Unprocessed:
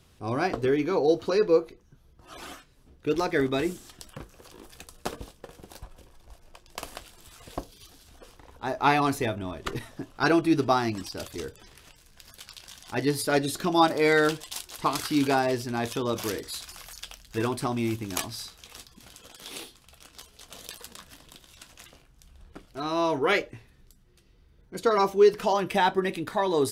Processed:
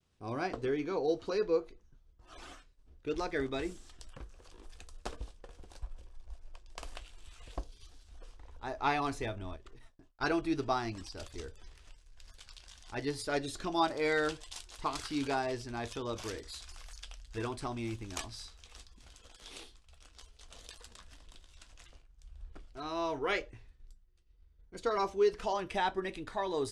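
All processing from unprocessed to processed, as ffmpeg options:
-filter_complex "[0:a]asettb=1/sr,asplit=3[a][b][c];[a]atrim=end=6.954[d];[b]atrim=start=6.95:end=7.52,asetpts=PTS-STARTPTS,afade=t=in:d=0.004:c=qsin,afade=t=out:st=0.566:d=0.004:c=qsin,equalizer=f=2.7k:w=1.8:g=5.5,bandreject=f=5k:w=17[e];[c]atrim=start=7.516[f];[d][e]acrossfade=d=0.004:c1=hsin:c2=qsin[g];[g][f]acrossfade=d=0.004:c1=qsin:c2=hsin,asettb=1/sr,asplit=3[h][i][j];[h]atrim=end=9.564[k];[i]atrim=start=9.56:end=10.21,asetpts=PTS-STARTPTS,afade=t=in:d=0.004:c=qsin,afade=t=out:st=0.646:d=0.004:c=qsin,agate=range=-33dB:threshold=-41dB:ratio=3:release=100:detection=peak,acompressor=threshold=-45dB:ratio=8:attack=3.2:release=140:knee=1:detection=peak[l];[j]atrim=start=10.206[m];[k][l]acrossfade=d=0.004:c1=hsin:c2=qsin[n];[n][m]acrossfade=d=0.004:c1=qsin:c2=hsin,lowpass=f=9.1k:w=0.5412,lowpass=f=9.1k:w=1.3066,agate=range=-33dB:threshold=-52dB:ratio=3:detection=peak,asubboost=boost=7.5:cutoff=56,volume=-8.5dB"

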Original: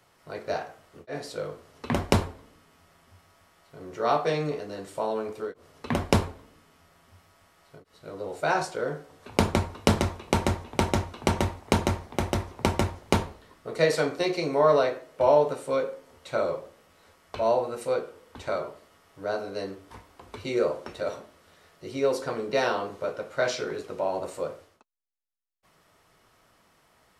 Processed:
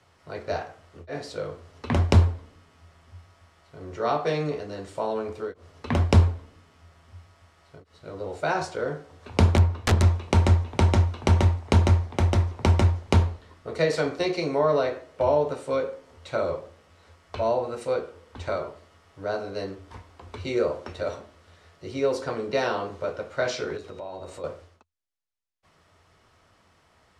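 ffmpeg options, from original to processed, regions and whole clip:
-filter_complex "[0:a]asettb=1/sr,asplit=3[a][b][c];[a]atrim=end=9.564[d];[b]atrim=start=9.56:end=10.03,asetpts=PTS-STARTPTS,afade=t=in:d=0.004:c=qsin,afade=t=out:st=0.466:d=0.004:c=qsin,highshelf=f=4.8k:g=-8,aeval=exprs='(mod(5.31*val(0)+1,2)-1)/5.31':c=same[e];[c]atrim=start=10.026[f];[d][e]acrossfade=d=0.004:c1=hsin:c2=qsin[g];[g][f]acrossfade=d=0.004:c1=qsin:c2=hsin,asettb=1/sr,asplit=3[h][i][j];[h]atrim=end=23.774[k];[i]atrim=start=23.77:end=24.44,asetpts=PTS-STARTPTS,afade=t=in:d=0.004:c=qsin,afade=t=out:st=0.666:d=0.004:c=qsin,acompressor=threshold=-39dB:ratio=2.5:attack=3.2:release=140:knee=1:detection=peak,aeval=exprs='val(0)+0.001*sin(2*PI*3800*n/s)':c=same[l];[j]atrim=start=24.436[m];[k][l]acrossfade=d=0.004:c1=hsin:c2=qsin[n];[n][m]acrossfade=d=0.004:c1=qsin:c2=hsin,lowpass=7.5k,equalizer=f=84:t=o:w=0.36:g=14.5,acrossover=split=420[o][p];[p]acompressor=threshold=-25dB:ratio=2[q];[o][q]amix=inputs=2:normalize=0,volume=1dB"

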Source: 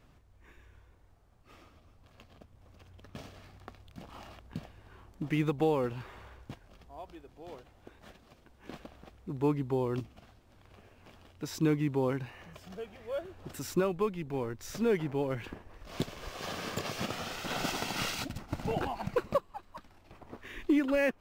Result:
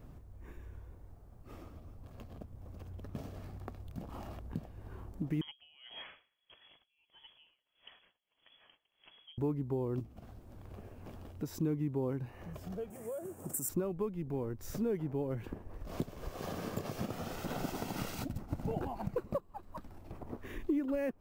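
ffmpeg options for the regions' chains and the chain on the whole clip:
-filter_complex "[0:a]asettb=1/sr,asplit=3[a][b][c];[a]atrim=end=5.414[d];[b]atrim=start=5.41:end=9.38,asetpts=PTS-STARTPTS,afade=t=in:d=0.004:c=qsin,afade=t=out:st=3.966:d=0.004:c=qsin,equalizer=f=1.4k:w=0.64:g=3,lowpass=f=2.9k:t=q:w=0.5098,lowpass=f=2.9k:t=q:w=0.6013,lowpass=f=2.9k:t=q:w=0.9,lowpass=f=2.9k:t=q:w=2.563,afreqshift=-3400,aeval=exprs='val(0)*pow(10,-30*(0.5-0.5*cos(2*PI*1.6*n/s))/20)':c=same[e];[c]atrim=start=9.376[f];[d][e]acrossfade=d=0.004:c1=hsin:c2=qsin[g];[g][f]acrossfade=d=0.004:c1=qsin:c2=hsin,asettb=1/sr,asplit=3[h][i][j];[h]atrim=end=12.904[k];[i]atrim=start=12.9:end=13.69,asetpts=PTS-STARTPTS,afade=t=in:d=0.004:c=qsin,afade=t=out:st=0.786:d=0.004:c=qsin,highpass=f=120:w=0.5412,highpass=f=120:w=1.3066,acompressor=threshold=-38dB:ratio=4:attack=3.2:release=140:knee=1:detection=peak,highshelf=f=5.9k:t=q:w=3:g=13.5[l];[j]atrim=start=13.686[m];[k][l]acrossfade=d=0.004:c1=hsin:c2=qsin[n];[n][m]acrossfade=d=0.004:c1=qsin:c2=hsin,equalizer=f=3.2k:w=0.32:g=-14.5,acompressor=threshold=-52dB:ratio=2,volume=10dB"

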